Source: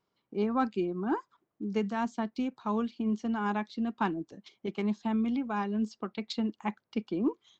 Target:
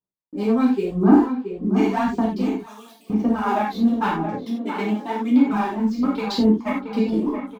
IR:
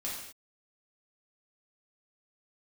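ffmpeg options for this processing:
-filter_complex "[0:a]asettb=1/sr,asplit=3[link_01][link_02][link_03];[link_01]atrim=end=0.864[link_04];[link_02]atrim=start=0.86:end=1.98,asetpts=PTS-STARTPTS,afade=type=in:duration=0.004:curve=qsin,afade=type=out:start_time=1.116:duration=0.004:curve=qsin,asplit=2[link_05][link_06];[link_06]adelay=41,volume=-2dB[link_07];[link_05][link_07]amix=inputs=2:normalize=0,atrim=end_sample=49392[link_08];[link_03]atrim=start=1.976[link_09];[link_04][link_08]acrossfade=duration=0.004:curve1=hsin:curve2=qsin[link_10];[link_10][link_09]acrossfade=duration=0.004:curve1=qsin:curve2=hsin,acrossover=split=330|1400[link_11][link_12][link_13];[link_13]aeval=exprs='sgn(val(0))*max(abs(val(0))-0.00133,0)':channel_layout=same[link_14];[link_11][link_12][link_14]amix=inputs=3:normalize=0,aphaser=in_gain=1:out_gain=1:delay=4.5:decay=0.77:speed=0.93:type=sinusoidal,asplit=2[link_15][link_16];[link_16]adelay=675,lowpass=frequency=1700:poles=1,volume=-8dB,asplit=2[link_17][link_18];[link_18]adelay=675,lowpass=frequency=1700:poles=1,volume=0.48,asplit=2[link_19][link_20];[link_20]adelay=675,lowpass=frequency=1700:poles=1,volume=0.48,asplit=2[link_21][link_22];[link_22]adelay=675,lowpass=frequency=1700:poles=1,volume=0.48,asplit=2[link_23][link_24];[link_24]adelay=675,lowpass=frequency=1700:poles=1,volume=0.48,asplit=2[link_25][link_26];[link_26]adelay=675,lowpass=frequency=1700:poles=1,volume=0.48[link_27];[link_15][link_17][link_19][link_21][link_23][link_25][link_27]amix=inputs=7:normalize=0,agate=range=-33dB:threshold=-53dB:ratio=3:detection=peak,asettb=1/sr,asplit=3[link_28][link_29][link_30];[link_28]atrim=end=2.564[link_31];[link_29]atrim=start=2.56:end=3.1,asetpts=PTS-STARTPTS,afade=type=in:duration=0.004:curve=qsin,afade=type=out:start_time=0.536:duration=0.004:curve=qsin,aderivative[link_32];[link_30]atrim=start=3.096[link_33];[link_31][link_32]acrossfade=duration=0.004:curve1=hsin:curve2=qsin[link_34];[link_34][link_33]acrossfade=duration=0.004:curve1=qsin:curve2=hsin,asettb=1/sr,asplit=3[link_35][link_36][link_37];[link_35]atrim=end=4.364[link_38];[link_36]atrim=start=4.36:end=5.5,asetpts=PTS-STARTPTS,afade=type=in:duration=0.004:curve=qsin,afade=type=out:start_time=1.136:duration=0.004:curve=qsin,highpass=frequency=230:width=0.5412,highpass=frequency=230:width=1.3066[link_39];[link_37]atrim=start=5.496[link_40];[link_38][link_39]acrossfade=duration=0.004:curve1=hsin:curve2=qsin[link_41];[link_41][link_40]acrossfade=duration=0.004:curve1=qsin:curve2=hsin[link_42];[1:a]atrim=start_sample=2205,afade=type=out:start_time=0.15:duration=0.01,atrim=end_sample=7056[link_43];[link_42][link_43]afir=irnorm=-1:irlink=0,asplit=2[link_44][link_45];[link_45]acompressor=threshold=-32dB:ratio=6,volume=-1dB[link_46];[link_44][link_46]amix=inputs=2:normalize=0,volume=2.5dB"

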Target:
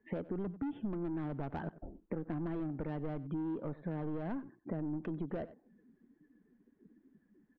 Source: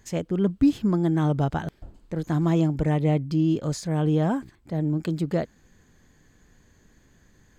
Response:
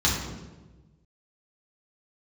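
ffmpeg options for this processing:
-filter_complex "[0:a]acrossover=split=210 2500:gain=0.0631 1 0.251[link_01][link_02][link_03];[link_01][link_02][link_03]amix=inputs=3:normalize=0,afftdn=noise_reduction=25:noise_floor=-52,aresample=8000,aresample=44100,asoftclip=type=tanh:threshold=-26.5dB,aemphasis=mode=reproduction:type=bsi,asplit=2[link_04][link_05];[link_05]adelay=93.29,volume=-20dB,highshelf=frequency=4000:gain=-2.1[link_06];[link_04][link_06]amix=inputs=2:normalize=0,acompressor=threshold=-42dB:ratio=6,volume=5.5dB"

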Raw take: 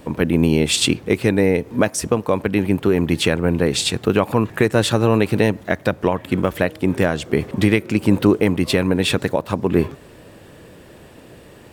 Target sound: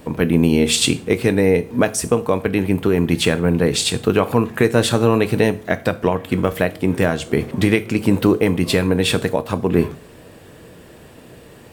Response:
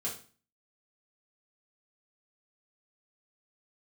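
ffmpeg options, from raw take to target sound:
-filter_complex "[0:a]asplit=2[link_01][link_02];[1:a]atrim=start_sample=2205,highshelf=frequency=6700:gain=11.5[link_03];[link_02][link_03]afir=irnorm=-1:irlink=0,volume=-12dB[link_04];[link_01][link_04]amix=inputs=2:normalize=0,volume=-1dB"

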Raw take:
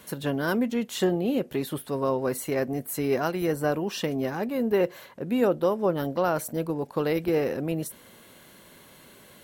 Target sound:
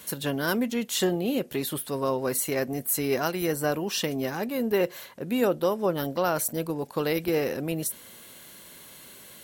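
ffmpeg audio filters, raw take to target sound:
ffmpeg -i in.wav -af "highshelf=frequency=2700:gain=10,volume=-1.5dB" out.wav

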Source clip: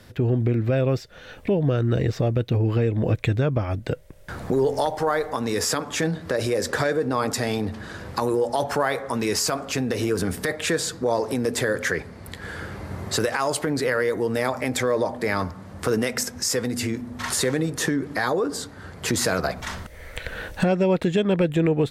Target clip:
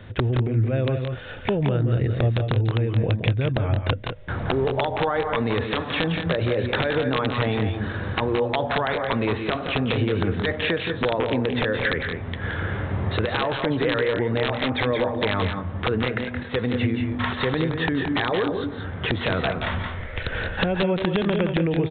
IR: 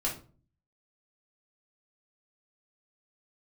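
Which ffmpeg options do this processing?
-af "equalizer=frequency=100:width_type=o:width=0.6:gain=7,acompressor=threshold=-24dB:ratio=8,aresample=8000,aeval=exprs='(mod(7.94*val(0)+1,2)-1)/7.94':channel_layout=same,aresample=44100,aecho=1:1:172|196:0.447|0.335,volume=4.5dB"

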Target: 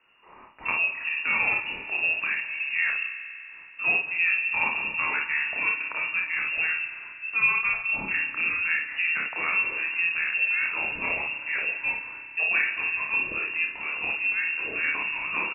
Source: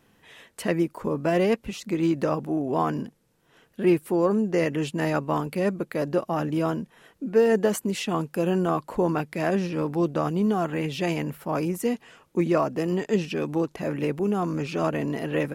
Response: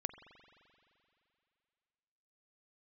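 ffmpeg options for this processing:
-filter_complex "[0:a]equalizer=frequency=410:width_type=o:width=2.6:gain=-9[link_01];[1:a]atrim=start_sample=2205,asetrate=40572,aresample=44100[link_02];[link_01][link_02]afir=irnorm=-1:irlink=0,lowpass=frequency=2500:width_type=q:width=0.5098,lowpass=frequency=2500:width_type=q:width=0.6013,lowpass=frequency=2500:width_type=q:width=0.9,lowpass=frequency=2500:width_type=q:width=2.563,afreqshift=-2900,aecho=1:1:30|57:0.596|0.562,volume=3dB"

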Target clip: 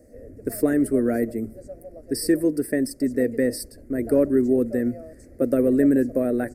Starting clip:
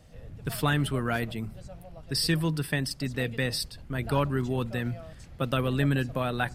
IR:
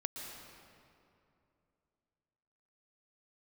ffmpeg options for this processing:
-af "firequalizer=gain_entry='entry(100,0);entry(160,-10);entry(240,14);entry(350,15);entry(590,12);entry(890,-14);entry(1900,2);entry(3200,-29);entry(4600,-5);entry(9000,7)':delay=0.05:min_phase=1,volume=-2.5dB"

